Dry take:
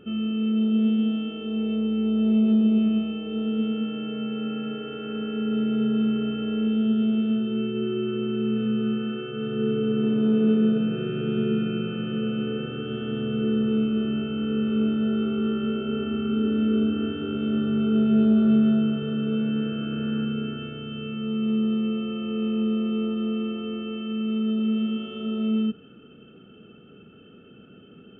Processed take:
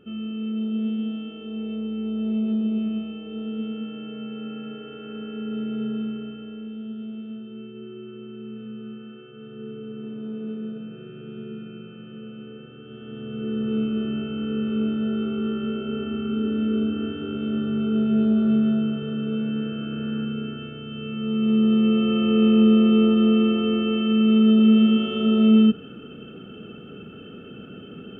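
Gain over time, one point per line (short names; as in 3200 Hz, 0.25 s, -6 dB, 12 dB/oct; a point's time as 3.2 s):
5.9 s -4.5 dB
6.66 s -12 dB
12.8 s -12 dB
13.78 s -1 dB
20.84 s -1 dB
22.17 s +9 dB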